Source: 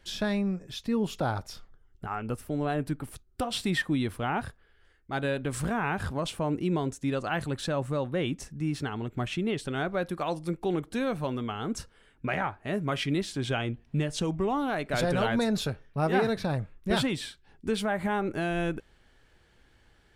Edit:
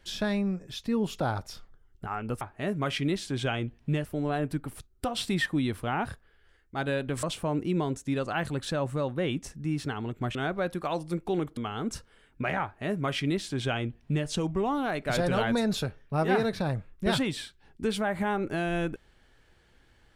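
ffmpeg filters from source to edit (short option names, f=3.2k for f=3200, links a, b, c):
-filter_complex "[0:a]asplit=6[a][b][c][d][e][f];[a]atrim=end=2.412[g];[b]atrim=start=12.468:end=14.112[h];[c]atrim=start=2.408:end=5.592[i];[d]atrim=start=6.188:end=9.312[j];[e]atrim=start=9.708:end=10.932[k];[f]atrim=start=11.408[l];[g][h]acrossfade=d=0.004:c1=hsin:c2=hsin[m];[m][i]acrossfade=d=0.004:c1=hsin:c2=hsin[n];[n][j]acrossfade=d=0.004:c1=hsin:c2=hsin[o];[o][k]acrossfade=d=0.004:c1=hsin:c2=hsin[p];[p][l]acrossfade=d=0.004:c1=hsin:c2=hsin"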